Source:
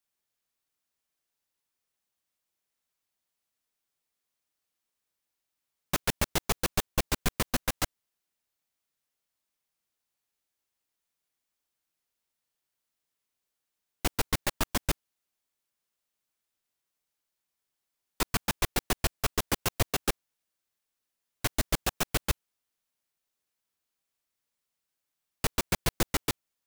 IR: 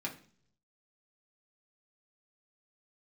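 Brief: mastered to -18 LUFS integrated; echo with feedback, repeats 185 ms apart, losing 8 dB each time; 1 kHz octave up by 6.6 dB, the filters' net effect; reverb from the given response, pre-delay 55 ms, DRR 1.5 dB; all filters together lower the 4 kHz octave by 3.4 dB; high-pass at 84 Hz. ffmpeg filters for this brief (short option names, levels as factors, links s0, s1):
-filter_complex "[0:a]highpass=84,equalizer=f=1000:t=o:g=8.5,equalizer=f=4000:t=o:g=-5,aecho=1:1:185|370|555|740|925:0.398|0.159|0.0637|0.0255|0.0102,asplit=2[s0][s1];[1:a]atrim=start_sample=2205,adelay=55[s2];[s1][s2]afir=irnorm=-1:irlink=0,volume=0.668[s3];[s0][s3]amix=inputs=2:normalize=0,volume=3.16"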